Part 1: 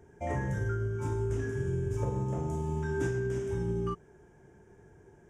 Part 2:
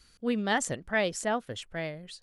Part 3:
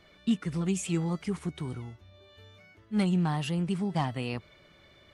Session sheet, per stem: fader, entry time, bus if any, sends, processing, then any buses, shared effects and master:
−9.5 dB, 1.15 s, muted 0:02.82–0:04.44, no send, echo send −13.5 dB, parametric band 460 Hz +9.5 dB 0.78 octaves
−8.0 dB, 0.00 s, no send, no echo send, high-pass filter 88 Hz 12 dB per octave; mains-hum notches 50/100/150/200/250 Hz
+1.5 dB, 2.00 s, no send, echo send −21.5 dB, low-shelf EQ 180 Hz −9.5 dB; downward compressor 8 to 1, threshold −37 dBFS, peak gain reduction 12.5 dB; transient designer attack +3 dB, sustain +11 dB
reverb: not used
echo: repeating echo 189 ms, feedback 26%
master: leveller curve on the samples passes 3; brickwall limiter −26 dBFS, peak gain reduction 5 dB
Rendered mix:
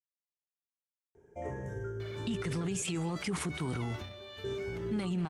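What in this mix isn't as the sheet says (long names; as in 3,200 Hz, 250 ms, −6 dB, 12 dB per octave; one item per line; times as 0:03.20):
stem 2: muted
stem 3 +1.5 dB → +9.0 dB
master: missing leveller curve on the samples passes 3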